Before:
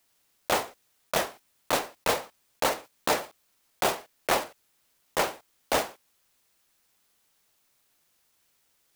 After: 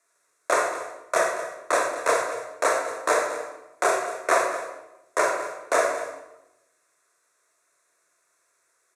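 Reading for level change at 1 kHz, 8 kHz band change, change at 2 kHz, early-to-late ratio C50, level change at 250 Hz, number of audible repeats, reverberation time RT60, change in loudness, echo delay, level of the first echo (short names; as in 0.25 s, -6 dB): +5.5 dB, +3.5 dB, +6.5 dB, 3.5 dB, -0.5 dB, 1, 0.95 s, +4.0 dB, 0.229 s, -14.5 dB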